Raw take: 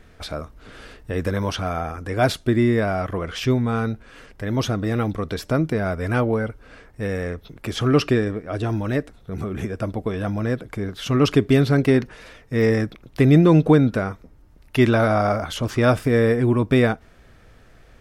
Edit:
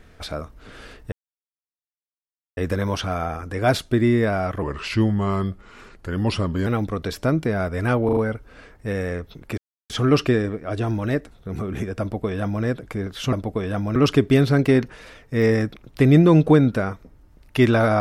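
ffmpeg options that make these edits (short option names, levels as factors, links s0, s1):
-filter_complex "[0:a]asplit=10[s0][s1][s2][s3][s4][s5][s6][s7][s8][s9];[s0]atrim=end=1.12,asetpts=PTS-STARTPTS,afade=t=out:st=1.116:d=0.004:c=hsin,apad=pad_dur=1.45[s10];[s1]atrim=start=1.12:end=3.174,asetpts=PTS-STARTPTS,afade=t=in:d=0.004:c=hsin[s11];[s2]atrim=start=3.17:end=4.93,asetpts=PTS-STARTPTS,asetrate=37926,aresample=44100,atrim=end_sample=90251,asetpts=PTS-STARTPTS[s12];[s3]atrim=start=4.926:end=6.352[s13];[s4]atrim=start=6.308:end=6.352[s14];[s5]atrim=start=6.308:end=6.352[s15];[s6]atrim=start=6.308:end=7.72,asetpts=PTS-STARTPTS,afade=t=out:st=1.408:d=0.004:c=hsin,apad=pad_dur=0.32[s16];[s7]atrim=start=7.72:end=11.152,asetpts=PTS-STARTPTS,afade=t=in:d=0.004:c=hsin[s17];[s8]atrim=start=9.828:end=10.462[s18];[s9]atrim=start=11.148[s19];[s10][s11]concat=n=2:v=0:a=1[s20];[s20][s12]acrossfade=d=0.004:c1=hsin:c2=hsin[s21];[s21][s13]acrossfade=d=0.004:c1=hsin:c2=hsin[s22];[s22][s14]acrossfade=d=0.004:c1=hsin:c2=hsin[s23];[s23][s15]acrossfade=d=0.004:c1=hsin:c2=hsin[s24];[s16][s17]concat=n=2:v=0:a=1[s25];[s24][s25]acrossfade=d=0.004:c1=hsin:c2=hsin[s26];[s26][s18]acrossfade=d=0.004:c1=hsin:c2=hsin[s27];[s27][s19]acrossfade=d=0.004:c1=hsin:c2=hsin"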